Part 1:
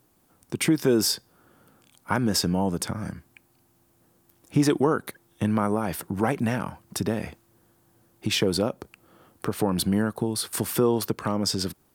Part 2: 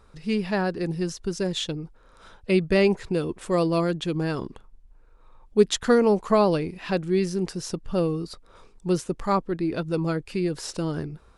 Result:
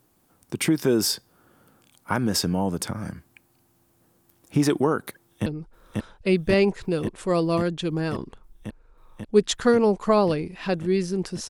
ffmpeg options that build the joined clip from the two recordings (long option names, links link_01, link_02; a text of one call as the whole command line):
ffmpeg -i cue0.wav -i cue1.wav -filter_complex "[0:a]apad=whole_dur=11.49,atrim=end=11.49,atrim=end=5.462[link_01];[1:a]atrim=start=1.688:end=7.72[link_02];[link_01][link_02]acrossfade=duration=0.004:curve1=hsin:curve2=hsin,asplit=2[link_03][link_04];[link_04]afade=type=in:start_time=5.19:duration=0.01,afade=type=out:start_time=5.46:duration=0.01,aecho=0:1:540|1080|1620|2160|2700|3240|3780|4320|4860|5400|5940|6480:0.794328|0.675179|0.573902|0.487817|0.414644|0.352448|0.299581|0.254643|0.216447|0.18398|0.156383|0.132925[link_05];[link_03][link_05]amix=inputs=2:normalize=0" out.wav